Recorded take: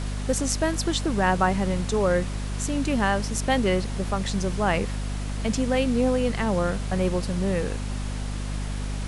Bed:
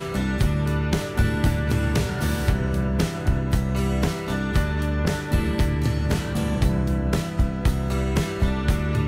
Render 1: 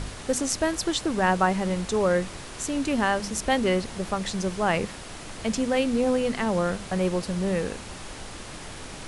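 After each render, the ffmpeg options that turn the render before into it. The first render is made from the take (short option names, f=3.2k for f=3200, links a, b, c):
-af "bandreject=f=50:t=h:w=4,bandreject=f=100:t=h:w=4,bandreject=f=150:t=h:w=4,bandreject=f=200:t=h:w=4,bandreject=f=250:t=h:w=4"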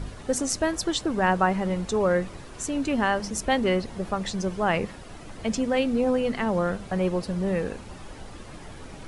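-af "afftdn=nr=10:nf=-40"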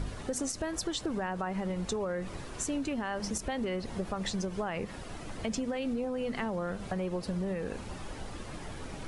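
-af "alimiter=limit=-19.5dB:level=0:latency=1:release=109,acompressor=threshold=-30dB:ratio=6"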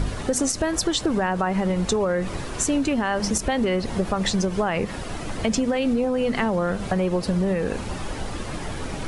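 -af "volume=11dB"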